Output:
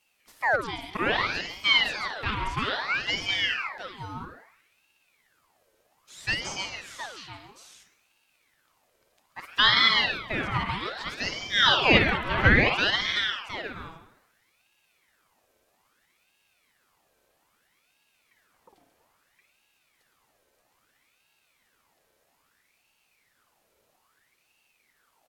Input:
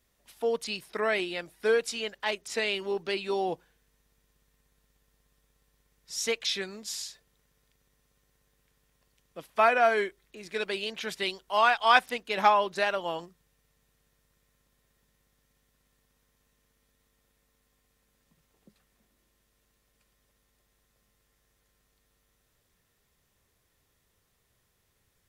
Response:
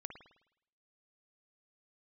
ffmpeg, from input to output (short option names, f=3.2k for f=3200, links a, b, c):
-filter_complex "[0:a]aecho=1:1:138|714:0.299|0.316[a];[1:a]atrim=start_sample=2205[b];[a][b]afir=irnorm=-1:irlink=0,acrossover=split=3100[c][d];[d]acompressor=threshold=-56dB:ratio=4:attack=1:release=60[e];[c][e]amix=inputs=2:normalize=0,aeval=exprs='val(0)*sin(2*PI*1600*n/s+1600*0.7/0.61*sin(2*PI*0.61*n/s))':c=same,volume=9dB"